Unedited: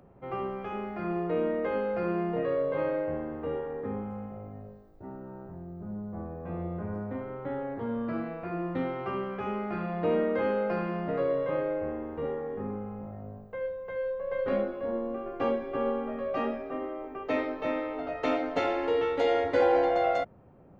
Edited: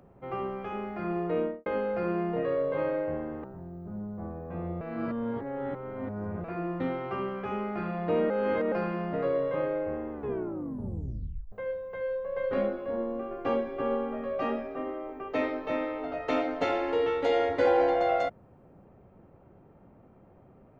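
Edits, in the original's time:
1.38–1.66 studio fade out
3.44–5.39 cut
6.76–8.39 reverse
10.25–10.67 reverse
12.06 tape stop 1.41 s

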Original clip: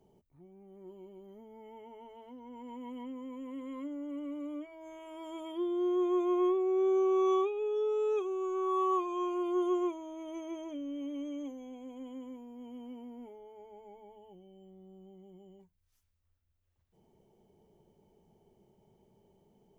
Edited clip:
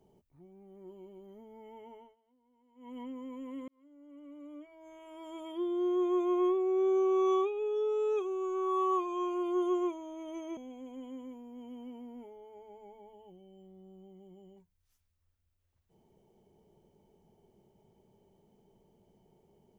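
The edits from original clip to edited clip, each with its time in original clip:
1.93–2.98 dip -23.5 dB, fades 0.23 s
3.68–5.71 fade in
10.57–11.6 cut

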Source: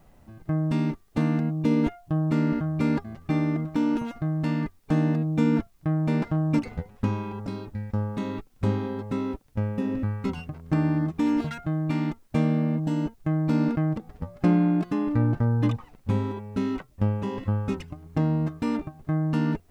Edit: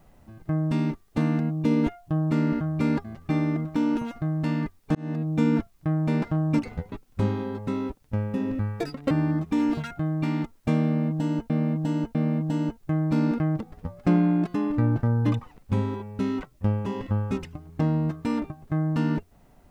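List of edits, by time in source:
4.95–5.43 fade in equal-power
6.92–8.36 cut
10.24–10.78 speed 175%
12.52–13.17 loop, 3 plays

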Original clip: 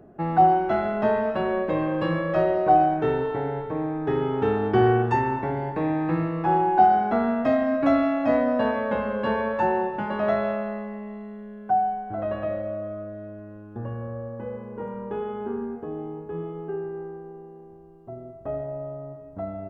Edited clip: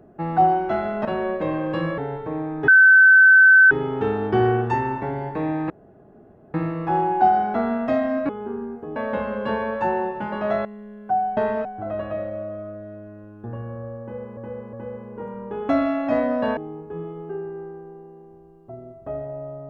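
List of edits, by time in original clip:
1.05–1.33 move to 11.97
2.26–3.42 cut
4.12 add tone 1530 Hz -8 dBFS 1.03 s
6.11 insert room tone 0.84 s
7.86–8.74 swap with 15.29–15.96
10.43–11.25 cut
14.33–14.69 loop, 3 plays

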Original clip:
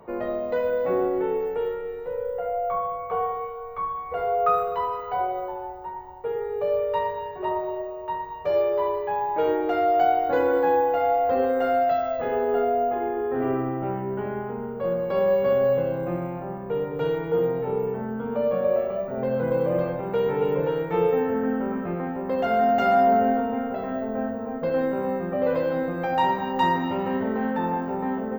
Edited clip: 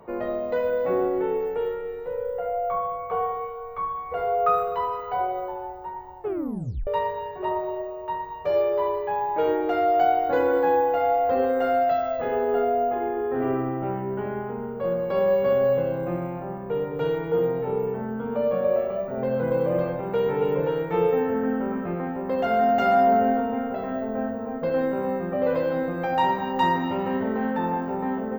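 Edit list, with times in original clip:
6.2 tape stop 0.67 s

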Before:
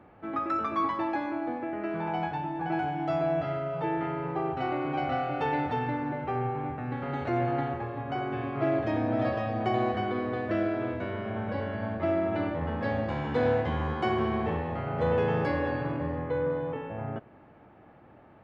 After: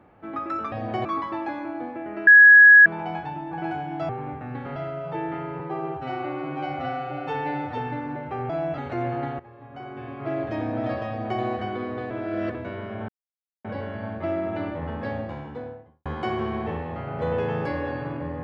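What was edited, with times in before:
1.94 add tone 1670 Hz -7 dBFS 0.59 s
3.17–3.45 swap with 6.46–7.13
4.29–5.74 stretch 1.5×
7.75–8.94 fade in, from -16 dB
9.44–9.77 copy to 0.72
10.46–10.9 reverse
11.44 insert silence 0.56 s
12.73–13.85 studio fade out

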